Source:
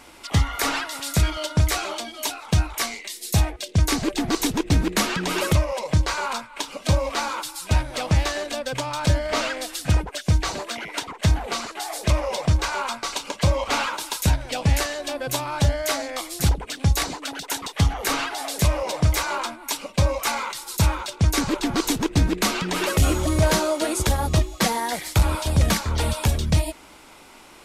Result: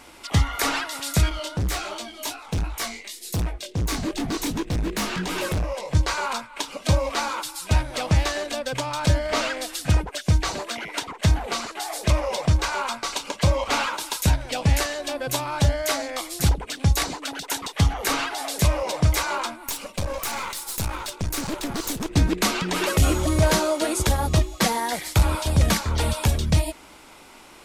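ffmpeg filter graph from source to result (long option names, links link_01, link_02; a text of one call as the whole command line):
ffmpeg -i in.wav -filter_complex "[0:a]asettb=1/sr,asplit=3[link_01][link_02][link_03];[link_01]atrim=end=1.294[link_04];[link_02]atrim=start=1.29:end=5.95,asetpts=PTS-STARTPTS,afade=type=in:duration=0.004:curve=qsin,afade=type=out:start_time=4.656:duration=0.004:curve=qsin,lowshelf=frequency=120:gain=7,flanger=delay=18:depth=4.2:speed=2.7,asoftclip=type=hard:threshold=-21.5dB[link_05];[link_03]atrim=start=5.946[link_06];[link_04][link_05]acrossfade=duration=0.004:curve1=hsin:curve2=qsin[link_07];[link_07][link_06]acrossfade=duration=0.004:curve1=qsin:curve2=hsin,asettb=1/sr,asplit=3[link_08][link_09][link_10];[link_08]atrim=end=19.554[link_11];[link_09]atrim=start=19.55:end=22.09,asetpts=PTS-STARTPTS,afade=type=in:duration=0.004:curve=qsin,afade=type=out:start_time=2.536:duration=0.004:curve=qsin,equalizer=frequency=12000:width=0.66:gain=7,acompressor=threshold=-22dB:ratio=2.5:attack=3.2:release=140:knee=1:detection=peak,aeval=exprs='clip(val(0),-1,0.0224)':channel_layout=same[link_12];[link_10]atrim=start=22.086[link_13];[link_11][link_12]acrossfade=duration=0.004:curve1=hsin:curve2=qsin[link_14];[link_14][link_13]acrossfade=duration=0.004:curve1=qsin:curve2=hsin" out.wav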